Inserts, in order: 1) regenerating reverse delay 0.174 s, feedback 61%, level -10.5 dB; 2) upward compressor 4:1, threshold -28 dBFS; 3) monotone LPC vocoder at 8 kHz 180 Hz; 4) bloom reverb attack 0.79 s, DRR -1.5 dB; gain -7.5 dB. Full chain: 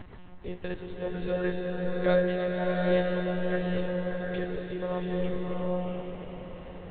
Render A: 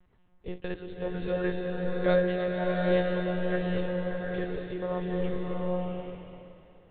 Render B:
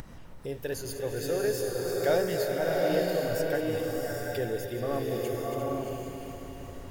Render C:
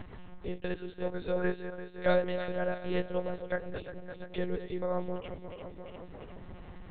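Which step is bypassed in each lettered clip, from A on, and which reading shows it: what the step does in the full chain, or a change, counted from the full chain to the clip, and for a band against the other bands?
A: 2, momentary loudness spread change -1 LU; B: 3, 4 kHz band +4.5 dB; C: 4, crest factor change +3.5 dB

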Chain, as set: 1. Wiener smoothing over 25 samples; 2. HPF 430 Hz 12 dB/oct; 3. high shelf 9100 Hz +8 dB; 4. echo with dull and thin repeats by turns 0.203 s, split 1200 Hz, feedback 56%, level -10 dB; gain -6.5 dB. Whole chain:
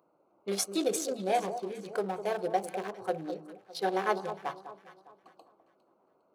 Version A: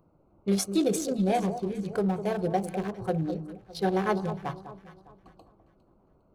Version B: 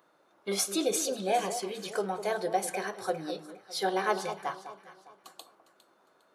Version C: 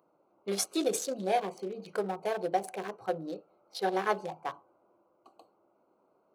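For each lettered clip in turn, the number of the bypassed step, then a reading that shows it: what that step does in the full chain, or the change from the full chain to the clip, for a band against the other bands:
2, 125 Hz band +15.0 dB; 1, 4 kHz band +3.5 dB; 4, echo-to-direct -12.0 dB to none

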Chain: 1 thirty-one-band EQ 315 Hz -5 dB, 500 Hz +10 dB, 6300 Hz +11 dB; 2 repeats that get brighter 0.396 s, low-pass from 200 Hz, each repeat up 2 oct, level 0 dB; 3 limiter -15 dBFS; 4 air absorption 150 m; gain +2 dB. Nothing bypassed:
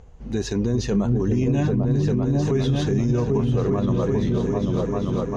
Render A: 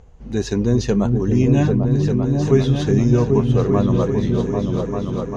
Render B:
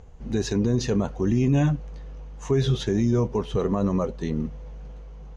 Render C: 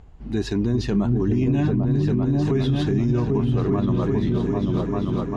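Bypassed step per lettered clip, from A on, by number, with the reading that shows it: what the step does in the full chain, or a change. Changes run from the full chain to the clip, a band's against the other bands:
3, mean gain reduction 3.0 dB; 2, momentary loudness spread change +17 LU; 1, 500 Hz band -2.0 dB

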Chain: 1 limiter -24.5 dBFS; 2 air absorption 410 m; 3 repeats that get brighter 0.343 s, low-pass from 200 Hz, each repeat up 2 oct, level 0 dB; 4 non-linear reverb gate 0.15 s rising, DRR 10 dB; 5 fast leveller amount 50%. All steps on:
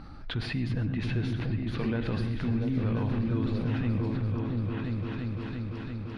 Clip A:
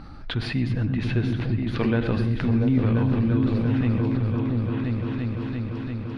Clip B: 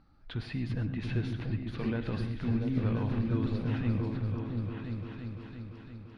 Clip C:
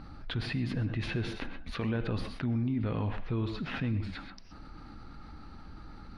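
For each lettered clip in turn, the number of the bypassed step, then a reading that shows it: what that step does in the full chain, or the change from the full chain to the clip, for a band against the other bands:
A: 1, mean gain reduction 2.5 dB; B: 5, crest factor change +2.5 dB; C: 3, momentary loudness spread change +12 LU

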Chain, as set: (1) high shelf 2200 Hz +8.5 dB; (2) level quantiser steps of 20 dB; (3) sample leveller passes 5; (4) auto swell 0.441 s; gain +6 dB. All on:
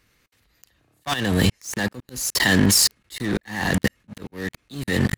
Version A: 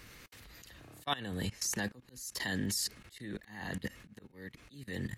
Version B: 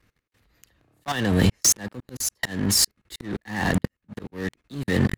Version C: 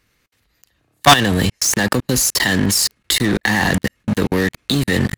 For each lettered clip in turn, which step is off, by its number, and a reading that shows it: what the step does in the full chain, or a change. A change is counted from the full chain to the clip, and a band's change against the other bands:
3, 1 kHz band +4.0 dB; 1, 2 kHz band -4.0 dB; 4, crest factor change -2.5 dB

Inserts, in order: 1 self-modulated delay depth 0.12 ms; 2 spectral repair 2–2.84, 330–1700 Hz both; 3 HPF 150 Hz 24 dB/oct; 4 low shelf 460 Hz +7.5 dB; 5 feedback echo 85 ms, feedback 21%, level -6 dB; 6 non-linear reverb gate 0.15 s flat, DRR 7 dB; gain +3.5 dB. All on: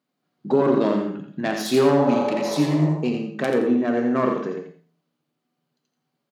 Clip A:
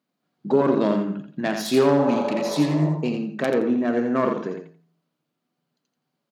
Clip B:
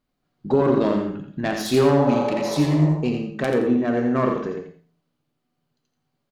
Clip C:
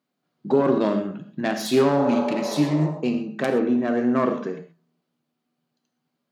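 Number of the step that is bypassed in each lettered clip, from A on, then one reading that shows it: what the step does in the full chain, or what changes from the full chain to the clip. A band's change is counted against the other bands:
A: 6, echo-to-direct -3.0 dB to -6.0 dB; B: 3, 125 Hz band +3.5 dB; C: 5, echo-to-direct -3.0 dB to -7.0 dB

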